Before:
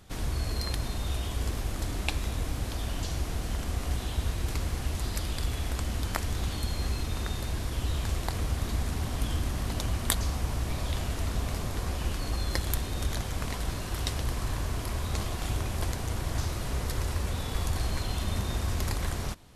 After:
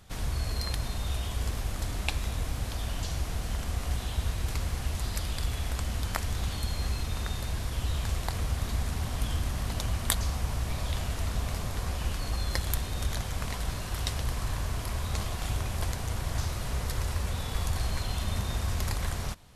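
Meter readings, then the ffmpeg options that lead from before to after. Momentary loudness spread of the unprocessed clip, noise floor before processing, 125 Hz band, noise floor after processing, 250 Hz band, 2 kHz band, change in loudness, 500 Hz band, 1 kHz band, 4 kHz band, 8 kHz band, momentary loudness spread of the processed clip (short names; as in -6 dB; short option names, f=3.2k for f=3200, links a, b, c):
2 LU, -35 dBFS, 0.0 dB, -36 dBFS, -3.0 dB, 0.0 dB, -0.5 dB, -2.0 dB, -0.5 dB, 0.0 dB, 0.0 dB, 2 LU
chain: -af "equalizer=f=320:t=o:w=0.89:g=-6"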